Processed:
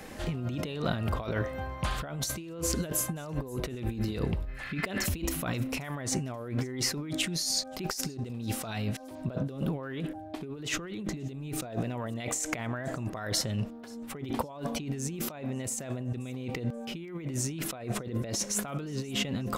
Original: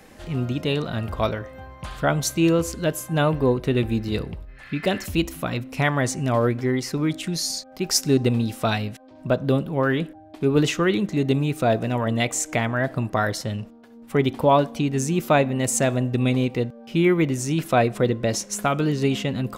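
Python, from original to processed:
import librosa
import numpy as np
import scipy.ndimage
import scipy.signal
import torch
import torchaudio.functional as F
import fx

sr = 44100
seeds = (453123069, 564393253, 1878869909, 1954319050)

y = fx.low_shelf(x, sr, hz=76.0, db=9.5, at=(10.72, 11.65))
y = fx.over_compress(y, sr, threshold_db=-31.0, ratio=-1.0)
y = fx.echo_wet_highpass(y, sr, ms=531, feedback_pct=34, hz=4200.0, wet_db=-23.5)
y = y * 10.0 ** (-3.5 / 20.0)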